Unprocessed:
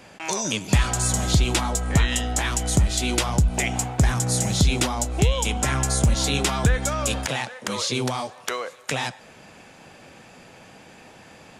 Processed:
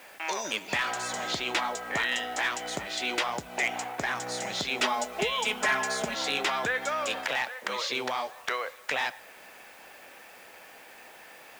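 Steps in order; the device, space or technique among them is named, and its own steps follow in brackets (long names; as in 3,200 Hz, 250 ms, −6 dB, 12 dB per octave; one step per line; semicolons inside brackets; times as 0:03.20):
drive-through speaker (band-pass filter 490–4,000 Hz; parametric band 1,900 Hz +4.5 dB 0.58 octaves; hard clipping −17 dBFS, distortion −21 dB; white noise bed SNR 25 dB)
0:04.80–0:06.15: comb filter 4.7 ms, depth 90%
level −2 dB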